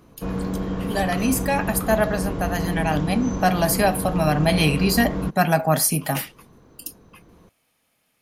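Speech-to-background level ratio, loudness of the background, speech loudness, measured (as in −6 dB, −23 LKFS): 5.5 dB, −27.5 LKFS, −22.0 LKFS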